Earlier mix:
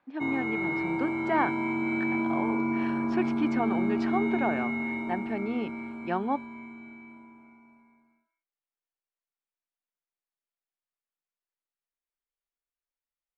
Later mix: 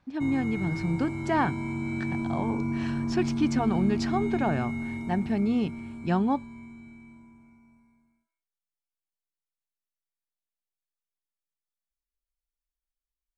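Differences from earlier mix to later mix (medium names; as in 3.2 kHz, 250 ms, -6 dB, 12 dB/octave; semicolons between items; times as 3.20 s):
background -8.0 dB; master: remove three-band isolator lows -23 dB, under 260 Hz, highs -20 dB, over 3.2 kHz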